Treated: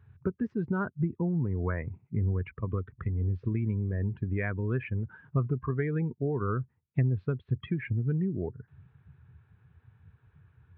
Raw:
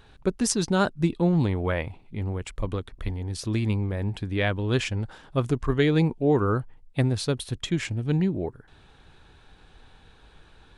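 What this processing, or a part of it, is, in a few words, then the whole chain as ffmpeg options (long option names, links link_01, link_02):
bass amplifier: -filter_complex "[0:a]acompressor=threshold=-32dB:ratio=4,highpass=frequency=70:width=0.5412,highpass=frequency=70:width=1.3066,equalizer=frequency=90:width_type=q:width=4:gain=5,equalizer=frequency=130:width_type=q:width=4:gain=5,equalizer=frequency=300:width_type=q:width=4:gain=-6,equalizer=frequency=560:width_type=q:width=4:gain=-9,equalizer=frequency=790:width_type=q:width=4:gain=-7,lowpass=frequency=2200:width=0.5412,lowpass=frequency=2200:width=1.3066,asettb=1/sr,asplit=3[link_01][link_02][link_03];[link_01]atrim=end=1.004[link_04];[link_02]atrim=start=1:end=2.31,asetpts=PTS-STARTPTS,afade=type=in:duration=0.004:curve=qsin,afade=type=out:start_time=1.306:duration=0.004:curve=qsin,lowpass=2500[link_05];[link_03]atrim=start=2.306[link_06];[link_04][link_05]acrossfade=duration=0.004:curve1=hsin:curve2=qsin[link_07];[link_07][link_06]acrossfade=duration=0.004:curve1=qsin:curve2=hsin,afftdn=noise_reduction=18:noise_floor=-43,highpass=frequency=60:poles=1,adynamicequalizer=threshold=0.00562:dfrequency=110:dqfactor=1.3:tfrequency=110:tqfactor=1.3:attack=5:release=100:ratio=0.375:range=2:mode=cutabove:tftype=bell,volume=5.5dB"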